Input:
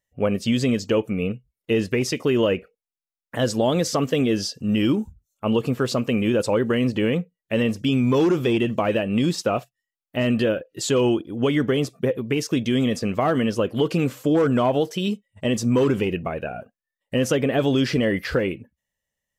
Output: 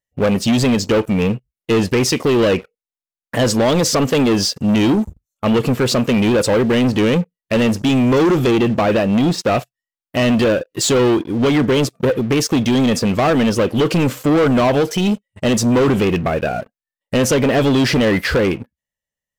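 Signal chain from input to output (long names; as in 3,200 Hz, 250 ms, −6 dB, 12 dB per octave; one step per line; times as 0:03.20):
0:08.51–0:09.49: high-shelf EQ 3,900 Hz −10 dB
leveller curve on the samples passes 3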